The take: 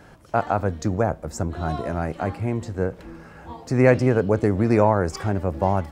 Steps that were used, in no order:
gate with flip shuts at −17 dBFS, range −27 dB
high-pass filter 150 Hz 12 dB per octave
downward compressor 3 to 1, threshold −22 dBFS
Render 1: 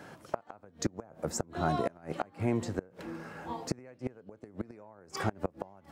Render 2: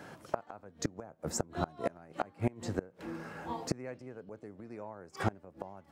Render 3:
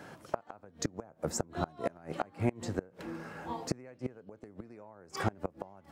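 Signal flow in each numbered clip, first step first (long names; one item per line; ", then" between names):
downward compressor, then high-pass filter, then gate with flip
high-pass filter, then gate with flip, then downward compressor
high-pass filter, then downward compressor, then gate with flip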